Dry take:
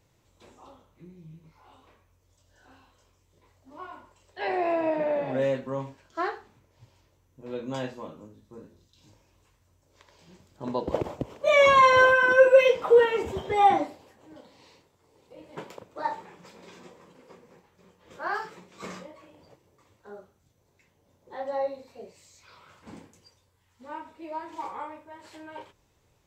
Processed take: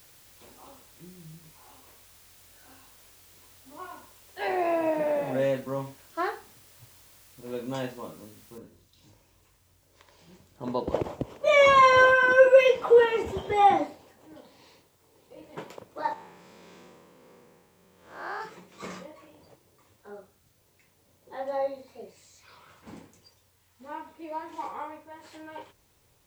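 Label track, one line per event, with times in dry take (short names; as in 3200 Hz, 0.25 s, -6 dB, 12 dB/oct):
8.580000	8.580000	noise floor step -56 dB -69 dB
16.130000	18.410000	time blur width 0.188 s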